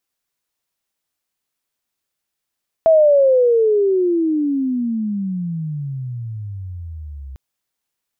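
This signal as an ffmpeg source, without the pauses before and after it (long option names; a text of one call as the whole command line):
ffmpeg -f lavfi -i "aevalsrc='pow(10,(-7.5-22.5*t/4.5)/20)*sin(2*PI*660*4.5/log(65/660)*(exp(log(65/660)*t/4.5)-1))':duration=4.5:sample_rate=44100" out.wav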